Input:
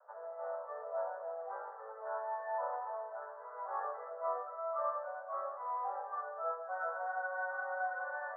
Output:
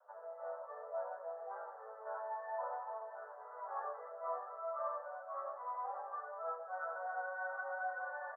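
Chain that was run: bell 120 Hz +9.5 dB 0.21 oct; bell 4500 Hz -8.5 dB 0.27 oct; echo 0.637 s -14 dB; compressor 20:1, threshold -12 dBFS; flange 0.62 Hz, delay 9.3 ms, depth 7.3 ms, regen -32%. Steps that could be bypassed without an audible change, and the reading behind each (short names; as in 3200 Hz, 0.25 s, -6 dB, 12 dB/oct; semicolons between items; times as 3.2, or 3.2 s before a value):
bell 120 Hz: input band starts at 380 Hz; bell 4500 Hz: input band ends at 1800 Hz; compressor, threshold -12 dBFS: input peak -23.5 dBFS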